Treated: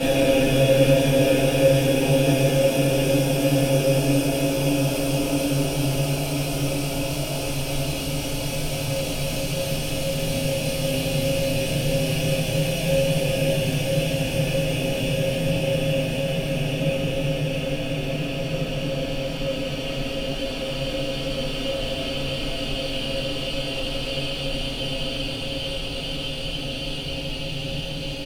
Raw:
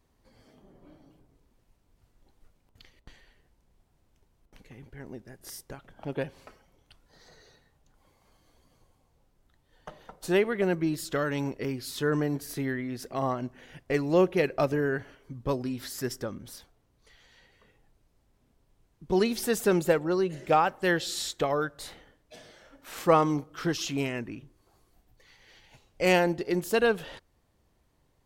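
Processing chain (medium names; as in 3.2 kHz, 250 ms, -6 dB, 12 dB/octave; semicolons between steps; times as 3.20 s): time reversed locally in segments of 240 ms; resonant high shelf 2.2 kHz +7 dB, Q 3; compression, threshold -38 dBFS, peak gain reduction 22.5 dB; on a send: multi-tap echo 452/664 ms -11/-12.5 dB; on the sum: Paulstretch 34×, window 0.50 s, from 6.05 s; simulated room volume 38 m³, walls mixed, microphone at 2.3 m; trim +8 dB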